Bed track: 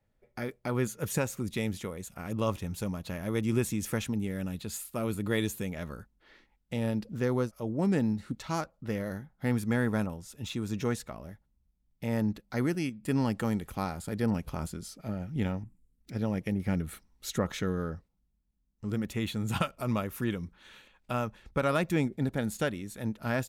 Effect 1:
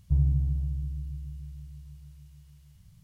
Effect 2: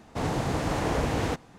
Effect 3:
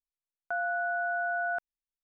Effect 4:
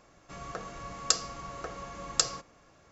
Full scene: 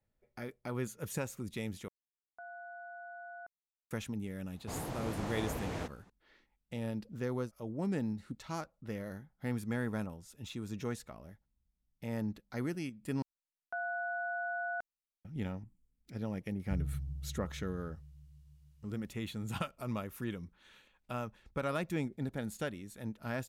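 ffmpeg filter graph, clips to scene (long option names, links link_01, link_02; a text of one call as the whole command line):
ffmpeg -i bed.wav -i cue0.wav -i cue1.wav -i cue2.wav -filter_complex "[3:a]asplit=2[link_01][link_02];[0:a]volume=-7.5dB[link_03];[link_01]lowpass=1500[link_04];[link_03]asplit=3[link_05][link_06][link_07];[link_05]atrim=end=1.884[link_08];[link_04]atrim=end=2.03,asetpts=PTS-STARTPTS,volume=-16dB[link_09];[link_06]atrim=start=3.906:end=13.224[link_10];[link_02]atrim=end=2.03,asetpts=PTS-STARTPTS,volume=-6.5dB[link_11];[link_07]atrim=start=15.246[link_12];[2:a]atrim=end=1.58,asetpts=PTS-STARTPTS,volume=-12dB,afade=type=in:duration=0.004:curve=hsin,afade=type=out:start_time=1.576:duration=0.004:curve=hsin,adelay=4520[link_13];[1:a]atrim=end=3.03,asetpts=PTS-STARTPTS,volume=-13dB,afade=type=in:duration=0.004:curve=hsin,afade=type=out:start_time=3.026:duration=0.004:curve=hsin,adelay=16600[link_14];[link_08][link_09]acrossfade=duration=0.004:curve1=hsin:curve2=hsin[link_15];[link_15][link_10]acrossfade=duration=0.004:curve1=hsin:curve2=hsin[link_16];[link_16][link_11]acrossfade=duration=0.004:curve1=hsin:curve2=hsin[link_17];[link_17][link_12]acrossfade=duration=0.004:curve1=hsin:curve2=hsin[link_18];[link_18][link_13][link_14]amix=inputs=3:normalize=0" out.wav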